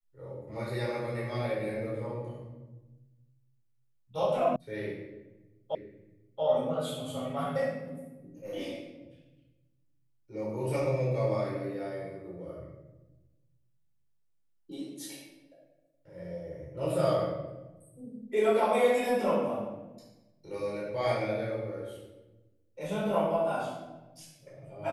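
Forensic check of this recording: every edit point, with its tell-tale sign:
0:04.56: cut off before it has died away
0:05.75: the same again, the last 0.68 s

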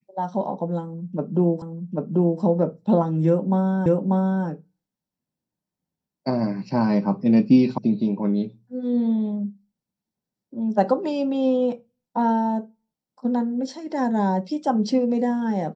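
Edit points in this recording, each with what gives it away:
0:01.62: the same again, the last 0.79 s
0:03.86: the same again, the last 0.59 s
0:07.78: cut off before it has died away

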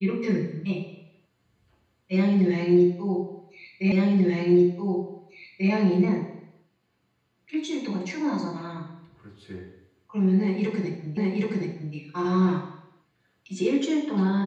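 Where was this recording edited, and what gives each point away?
0:03.92: the same again, the last 1.79 s
0:11.17: the same again, the last 0.77 s

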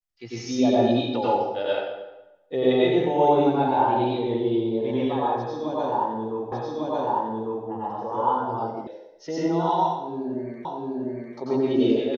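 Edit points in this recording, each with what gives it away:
0:06.52: the same again, the last 1.15 s
0:08.87: cut off before it has died away
0:10.65: the same again, the last 0.7 s

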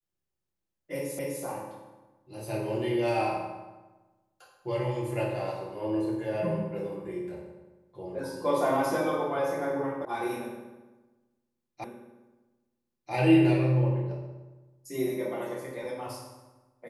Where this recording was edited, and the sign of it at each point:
0:01.19: the same again, the last 0.25 s
0:10.05: cut off before it has died away
0:11.84: the same again, the last 1.29 s

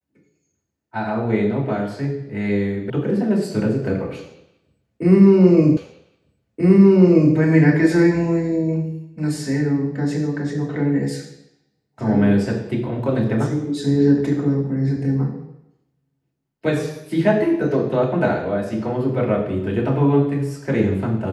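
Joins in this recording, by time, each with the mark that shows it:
0:02.90: cut off before it has died away
0:05.77: the same again, the last 1.58 s

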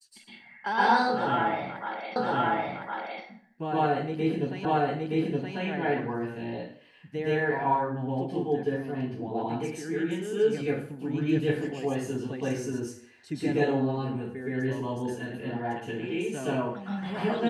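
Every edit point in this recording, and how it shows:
0:02.16: the same again, the last 1.06 s
0:04.65: the same again, the last 0.92 s

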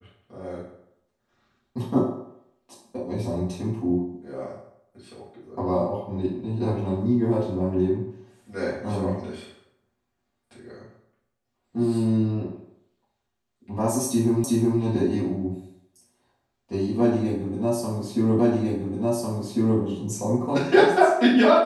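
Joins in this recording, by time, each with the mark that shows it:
0:14.44: the same again, the last 0.37 s
0:18.39: the same again, the last 1.4 s

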